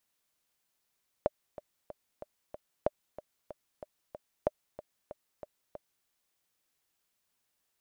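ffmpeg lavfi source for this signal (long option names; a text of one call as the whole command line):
ffmpeg -f lavfi -i "aevalsrc='pow(10,(-13-16.5*gte(mod(t,5*60/187),60/187))/20)*sin(2*PI*602*mod(t,60/187))*exp(-6.91*mod(t,60/187)/0.03)':duration=4.81:sample_rate=44100" out.wav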